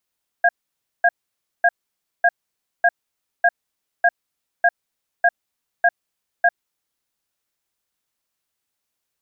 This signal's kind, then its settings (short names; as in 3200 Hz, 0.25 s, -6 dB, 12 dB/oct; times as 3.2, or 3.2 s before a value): cadence 696 Hz, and 1630 Hz, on 0.05 s, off 0.55 s, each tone -13.5 dBFS 6.30 s